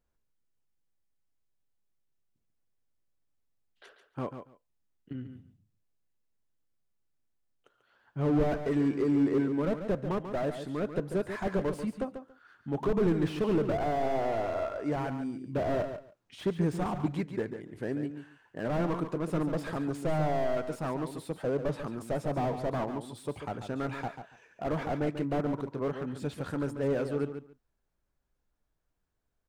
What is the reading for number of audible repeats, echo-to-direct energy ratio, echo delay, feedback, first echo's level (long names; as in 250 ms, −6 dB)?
2, −9.0 dB, 141 ms, 16%, −9.0 dB